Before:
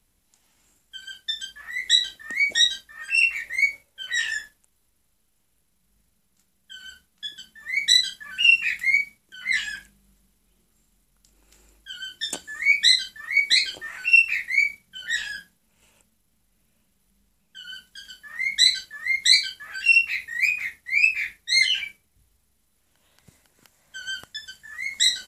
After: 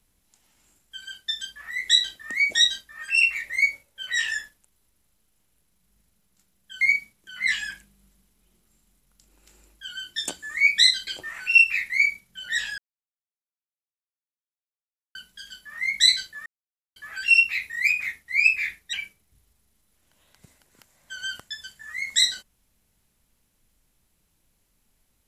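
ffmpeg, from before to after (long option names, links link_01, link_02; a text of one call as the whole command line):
ffmpeg -i in.wav -filter_complex "[0:a]asplit=8[link_01][link_02][link_03][link_04][link_05][link_06][link_07][link_08];[link_01]atrim=end=6.812[link_09];[link_02]atrim=start=8.858:end=13.122[link_10];[link_03]atrim=start=13.648:end=15.36,asetpts=PTS-STARTPTS,afade=type=out:start_time=1.708:duration=0.004:curve=hsin[link_11];[link_04]atrim=start=15.36:end=17.73,asetpts=PTS-STARTPTS,volume=0[link_12];[link_05]atrim=start=17.73:end=19.04,asetpts=PTS-STARTPTS,afade=type=in:duration=0.004:curve=hsin,afade=type=out:start_time=1.306:duration=0.004:curve=hsin[link_13];[link_06]atrim=start=19.04:end=19.54,asetpts=PTS-STARTPTS,volume=0[link_14];[link_07]atrim=start=19.54:end=21.512,asetpts=PTS-STARTPTS,afade=type=in:duration=0.004:curve=hsin[link_15];[link_08]atrim=start=21.768[link_16];[link_09][link_10]acrossfade=duration=0.004:curve1=hsin:curve2=hsin[link_17];[link_11][link_12][link_13][link_14][link_15]concat=n=5:v=0:a=1[link_18];[link_17][link_18]acrossfade=duration=0.004:curve1=hsin:curve2=hsin[link_19];[link_19][link_16]acrossfade=duration=0.004:curve1=hsin:curve2=hsin" out.wav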